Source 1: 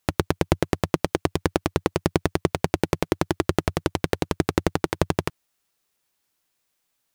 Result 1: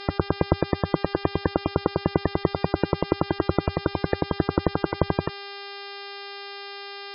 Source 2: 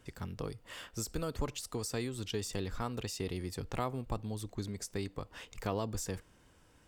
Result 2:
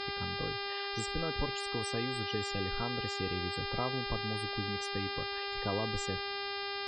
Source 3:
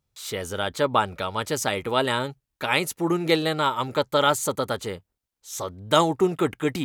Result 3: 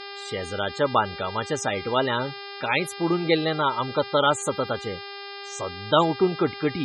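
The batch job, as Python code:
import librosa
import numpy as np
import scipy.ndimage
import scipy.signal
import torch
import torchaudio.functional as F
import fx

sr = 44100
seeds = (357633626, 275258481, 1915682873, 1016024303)

y = fx.dmg_buzz(x, sr, base_hz=400.0, harmonics=13, level_db=-38.0, tilt_db=-2, odd_only=False)
y = fx.spec_topn(y, sr, count=64)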